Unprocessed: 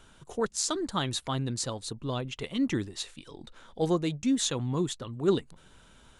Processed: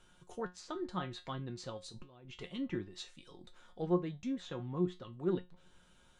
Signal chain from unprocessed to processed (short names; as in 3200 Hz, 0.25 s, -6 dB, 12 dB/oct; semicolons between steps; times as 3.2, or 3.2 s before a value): treble ducked by the level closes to 2100 Hz, closed at -26 dBFS; 1.87–2.37 negative-ratio compressor -44 dBFS, ratio -1; resonator 180 Hz, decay 0.22 s, harmonics all, mix 80%